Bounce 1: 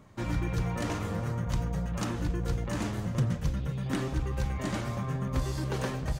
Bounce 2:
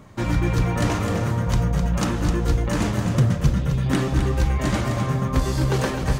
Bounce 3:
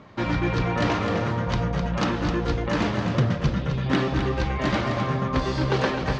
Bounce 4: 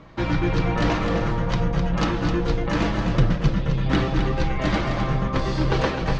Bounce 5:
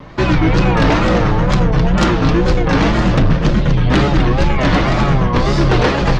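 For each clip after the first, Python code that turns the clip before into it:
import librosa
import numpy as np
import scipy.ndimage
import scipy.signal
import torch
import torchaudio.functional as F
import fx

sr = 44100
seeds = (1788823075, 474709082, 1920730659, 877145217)

y1 = x + 10.0 ** (-7.0 / 20.0) * np.pad(x, (int(257 * sr / 1000.0), 0))[:len(x)]
y1 = y1 * 10.0 ** (9.0 / 20.0)
y2 = scipy.signal.sosfilt(scipy.signal.butter(4, 4800.0, 'lowpass', fs=sr, output='sos'), y1)
y2 = fx.low_shelf(y2, sr, hz=140.0, db=-11.5)
y2 = y2 * 10.0 ** (2.0 / 20.0)
y3 = fx.octave_divider(y2, sr, octaves=2, level_db=0.0)
y3 = y3 + 0.38 * np.pad(y3, (int(6.1 * sr / 1000.0), 0))[:len(y3)]
y4 = fx.fold_sine(y3, sr, drive_db=7, ceiling_db=-6.5)
y4 = fx.wow_flutter(y4, sr, seeds[0], rate_hz=2.1, depth_cents=140.0)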